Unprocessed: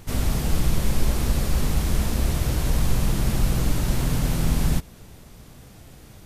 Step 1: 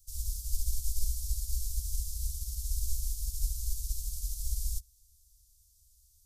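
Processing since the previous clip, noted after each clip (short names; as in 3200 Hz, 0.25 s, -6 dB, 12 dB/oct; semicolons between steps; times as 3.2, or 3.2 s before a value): inverse Chebyshev band-stop 200–1800 Hz, stop band 60 dB; low shelf 130 Hz -7.5 dB; upward expander 1.5:1, over -39 dBFS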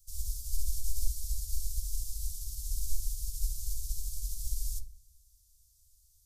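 shoebox room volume 590 m³, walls furnished, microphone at 0.61 m; gain -1.5 dB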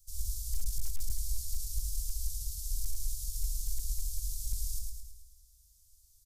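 soft clip -20.5 dBFS, distortion -18 dB; on a send: feedback echo 0.108 s, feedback 53%, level -4.5 dB; on the sum: hard clip -23 dBFS, distortion -21 dB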